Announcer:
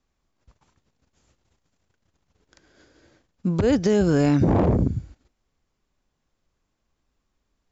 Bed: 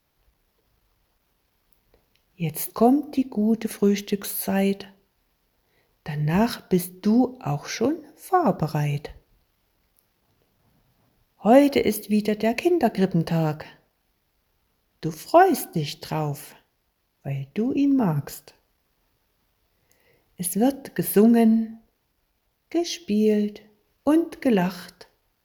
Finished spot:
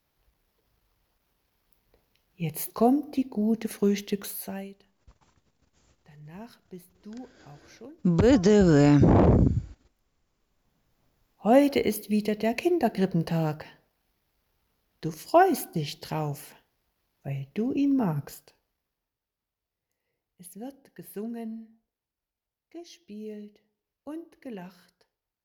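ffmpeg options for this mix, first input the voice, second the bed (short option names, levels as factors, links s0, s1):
-filter_complex "[0:a]adelay=4600,volume=1.06[s0];[1:a]volume=5.62,afade=t=out:st=4.18:d=0.51:silence=0.112202,afade=t=in:st=10.24:d=1.37:silence=0.112202,afade=t=out:st=17.96:d=1.15:silence=0.16788[s1];[s0][s1]amix=inputs=2:normalize=0"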